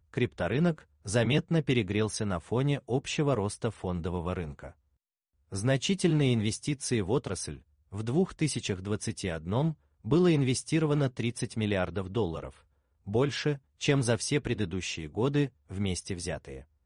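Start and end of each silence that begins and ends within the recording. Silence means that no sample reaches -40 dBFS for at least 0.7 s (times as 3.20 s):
4.69–5.52 s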